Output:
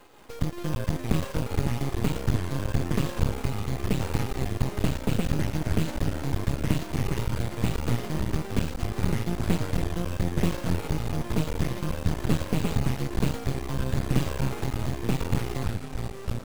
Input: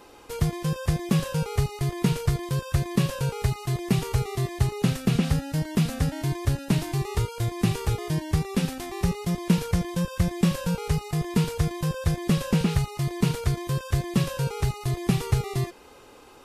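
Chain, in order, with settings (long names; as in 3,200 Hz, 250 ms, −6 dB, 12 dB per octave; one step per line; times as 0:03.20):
bad sample-rate conversion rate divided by 4×, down filtered, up hold
delay with pitch and tempo change per echo 180 ms, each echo −5 semitones, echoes 3
half-wave rectification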